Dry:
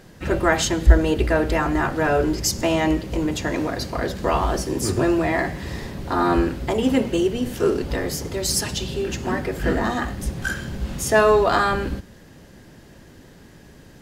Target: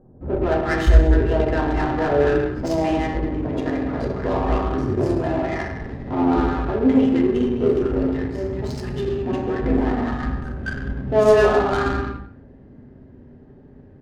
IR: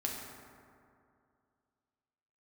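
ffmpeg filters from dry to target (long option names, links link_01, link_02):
-filter_complex "[0:a]acrossover=split=1100[link_01][link_02];[link_02]adelay=210[link_03];[link_01][link_03]amix=inputs=2:normalize=0[link_04];[1:a]atrim=start_sample=2205,afade=type=out:start_time=0.37:duration=0.01,atrim=end_sample=16758[link_05];[link_04][link_05]afir=irnorm=-1:irlink=0,adynamicsmooth=sensitivity=1:basefreq=910,volume=-2dB"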